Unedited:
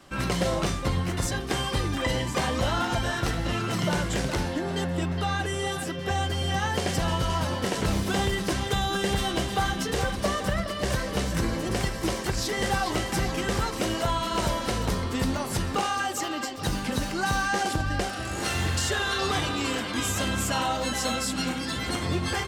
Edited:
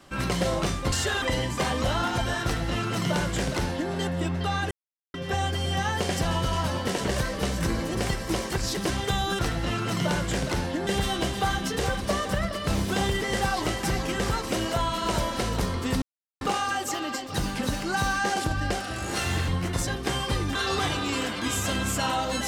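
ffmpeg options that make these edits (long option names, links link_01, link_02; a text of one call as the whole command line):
ffmpeg -i in.wav -filter_complex "[0:a]asplit=15[link_01][link_02][link_03][link_04][link_05][link_06][link_07][link_08][link_09][link_10][link_11][link_12][link_13][link_14][link_15];[link_01]atrim=end=0.922[link_16];[link_02]atrim=start=18.768:end=19.072[link_17];[link_03]atrim=start=1.988:end=5.48,asetpts=PTS-STARTPTS,afade=type=out:start_time=3.488:duration=0.004:curve=hsin[link_18];[link_04]atrim=start=5.48:end=5.91,asetpts=PTS-STARTPTS,volume=0[link_19];[link_05]atrim=start=5.91:end=7.852,asetpts=PTS-STARTPTS,afade=type=in:duration=0.004:curve=hsin[link_20];[link_06]atrim=start=10.818:end=12.512[link_21];[link_07]atrim=start=8.398:end=9.022[link_22];[link_08]atrim=start=3.208:end=4.692[link_23];[link_09]atrim=start=9.018:end=10.822[link_24];[link_10]atrim=start=7.848:end=8.402[link_25];[link_11]atrim=start=12.508:end=15.31,asetpts=PTS-STARTPTS,afade=type=out:start_time=2.798:duration=0.004:curve=hsin[link_26];[link_12]atrim=start=15.31:end=15.7,asetpts=PTS-STARTPTS,volume=0[link_27];[link_13]atrim=start=15.7:end=18.772,asetpts=PTS-STARTPTS,afade=type=in:duration=0.004:curve=hsin[link_28];[link_14]atrim=start=0.918:end=1.992[link_29];[link_15]atrim=start=19.068[link_30];[link_16][link_17]acrossfade=duration=0.004:curve1=hsin:curve2=hsin[link_31];[link_18][link_19][link_20]concat=n=3:v=0:a=1[link_32];[link_31][link_32]acrossfade=duration=0.004:curve1=hsin:curve2=hsin[link_33];[link_33][link_21]acrossfade=duration=0.004:curve1=hsin:curve2=hsin[link_34];[link_34][link_22]acrossfade=duration=0.004:curve1=hsin:curve2=hsin[link_35];[link_35][link_23]acrossfade=duration=0.004:curve1=hsin:curve2=hsin[link_36];[link_36][link_24]acrossfade=duration=0.004:curve1=hsin:curve2=hsin[link_37];[link_37][link_25]acrossfade=duration=0.004:curve1=hsin:curve2=hsin[link_38];[link_26][link_27][link_28]concat=n=3:v=0:a=1[link_39];[link_38][link_39]acrossfade=duration=0.004:curve1=hsin:curve2=hsin[link_40];[link_40][link_29]acrossfade=duration=0.004:curve1=hsin:curve2=hsin[link_41];[link_41][link_30]acrossfade=duration=0.004:curve1=hsin:curve2=hsin" out.wav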